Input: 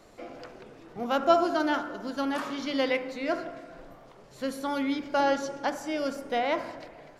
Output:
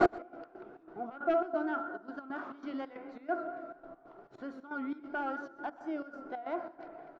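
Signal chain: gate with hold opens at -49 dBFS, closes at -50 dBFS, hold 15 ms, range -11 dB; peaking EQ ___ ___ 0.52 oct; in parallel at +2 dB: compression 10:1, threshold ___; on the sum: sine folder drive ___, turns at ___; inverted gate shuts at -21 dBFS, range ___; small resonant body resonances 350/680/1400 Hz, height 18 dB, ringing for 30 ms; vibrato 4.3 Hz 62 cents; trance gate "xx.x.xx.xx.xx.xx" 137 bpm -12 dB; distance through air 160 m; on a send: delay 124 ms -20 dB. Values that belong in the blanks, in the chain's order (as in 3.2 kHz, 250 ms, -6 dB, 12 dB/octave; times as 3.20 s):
1.1 kHz, +9.5 dB, -37 dBFS, 10 dB, -4 dBFS, -35 dB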